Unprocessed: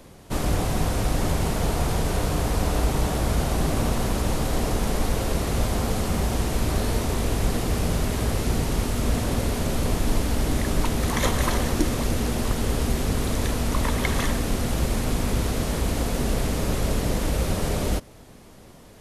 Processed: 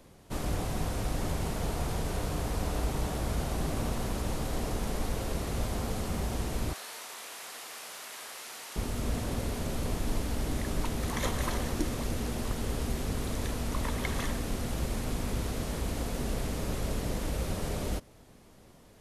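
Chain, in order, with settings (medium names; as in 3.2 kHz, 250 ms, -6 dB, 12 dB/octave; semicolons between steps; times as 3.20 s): 6.73–8.76 s: high-pass 1.1 kHz 12 dB/octave; trim -8.5 dB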